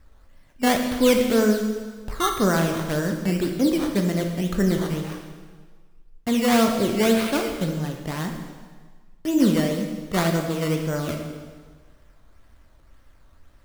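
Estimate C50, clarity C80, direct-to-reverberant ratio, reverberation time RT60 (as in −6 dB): 5.0 dB, 7.0 dB, 2.5 dB, 1.5 s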